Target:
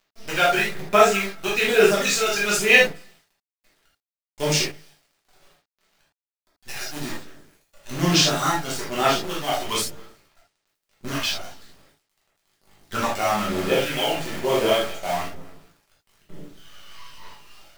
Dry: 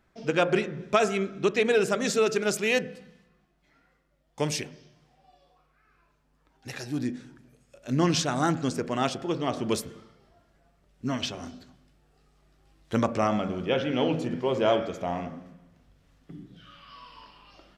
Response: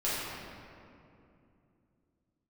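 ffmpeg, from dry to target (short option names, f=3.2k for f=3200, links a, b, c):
-filter_complex "[0:a]aphaser=in_gain=1:out_gain=1:delay=1.4:decay=0.58:speed=1.1:type=sinusoidal,tiltshelf=f=830:g=-6,acrusher=bits=6:dc=4:mix=0:aa=0.000001[a];[1:a]atrim=start_sample=2205,atrim=end_sample=3969[b];[a][b]afir=irnorm=-1:irlink=0,volume=-2.5dB"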